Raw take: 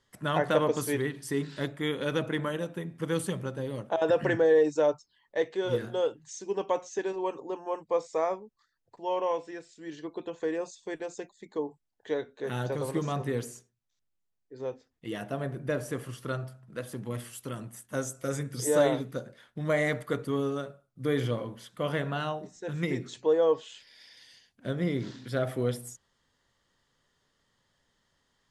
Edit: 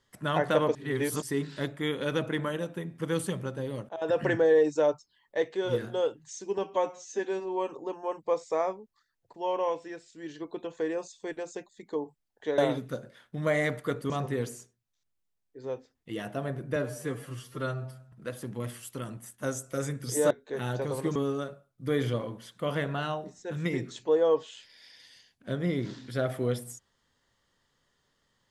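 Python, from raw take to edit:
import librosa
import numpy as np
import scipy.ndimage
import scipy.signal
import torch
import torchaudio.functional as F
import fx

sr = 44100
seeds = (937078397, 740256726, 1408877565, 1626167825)

y = fx.edit(x, sr, fx.reverse_span(start_s=0.75, length_s=0.47),
    fx.fade_in_from(start_s=3.89, length_s=0.33, floor_db=-15.5),
    fx.stretch_span(start_s=6.58, length_s=0.74, factor=1.5),
    fx.swap(start_s=12.21, length_s=0.85, other_s=18.81, other_length_s=1.52),
    fx.stretch_span(start_s=15.72, length_s=0.91, factor=1.5), tone=tone)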